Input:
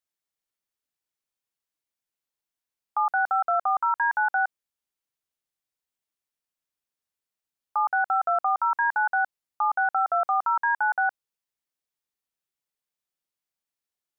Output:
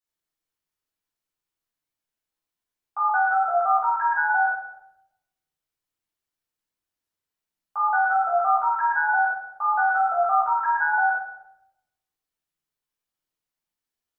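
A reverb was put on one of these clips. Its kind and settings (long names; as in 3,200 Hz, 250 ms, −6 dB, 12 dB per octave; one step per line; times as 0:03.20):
rectangular room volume 250 cubic metres, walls mixed, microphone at 3.4 metres
level −8 dB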